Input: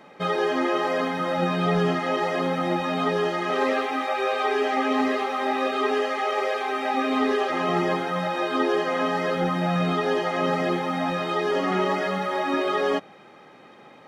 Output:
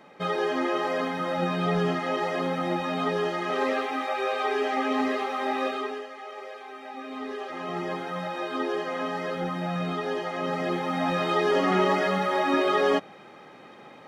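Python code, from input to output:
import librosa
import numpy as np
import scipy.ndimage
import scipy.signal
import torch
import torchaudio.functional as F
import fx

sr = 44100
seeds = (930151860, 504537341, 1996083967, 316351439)

y = fx.gain(x, sr, db=fx.line((5.68, -3.0), (6.08, -15.0), (6.94, -15.0), (8.1, -6.0), (10.42, -6.0), (11.23, 1.0)))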